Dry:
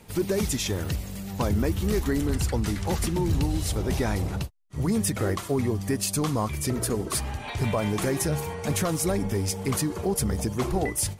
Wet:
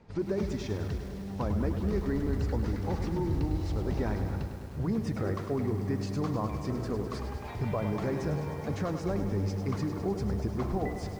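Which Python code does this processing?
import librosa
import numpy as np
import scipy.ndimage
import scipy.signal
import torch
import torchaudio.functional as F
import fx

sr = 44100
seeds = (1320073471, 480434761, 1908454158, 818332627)

y = scipy.signal.sosfilt(scipy.signal.butter(4, 4700.0, 'lowpass', fs=sr, output='sos'), x)
y = fx.peak_eq(y, sr, hz=3200.0, db=-11.0, octaves=1.2)
y = y + 10.0 ** (-20.5 / 20.0) * np.pad(y, (int(765 * sr / 1000.0), 0))[:len(y)]
y = fx.echo_crushed(y, sr, ms=102, feedback_pct=80, bits=8, wet_db=-9)
y = F.gain(torch.from_numpy(y), -5.5).numpy()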